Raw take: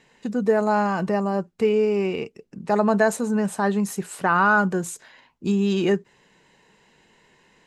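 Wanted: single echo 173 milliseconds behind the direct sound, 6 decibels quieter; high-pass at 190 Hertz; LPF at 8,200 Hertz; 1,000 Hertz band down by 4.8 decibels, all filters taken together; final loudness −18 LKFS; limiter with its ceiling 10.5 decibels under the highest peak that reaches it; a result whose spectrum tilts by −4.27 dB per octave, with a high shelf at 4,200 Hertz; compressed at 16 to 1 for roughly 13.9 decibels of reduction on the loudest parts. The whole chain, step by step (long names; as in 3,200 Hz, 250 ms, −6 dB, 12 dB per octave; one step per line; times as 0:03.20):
high-pass filter 190 Hz
low-pass filter 8,200 Hz
parametric band 1,000 Hz −7 dB
high-shelf EQ 4,200 Hz +9 dB
downward compressor 16 to 1, threshold −30 dBFS
brickwall limiter −27.5 dBFS
single-tap delay 173 ms −6 dB
level +18.5 dB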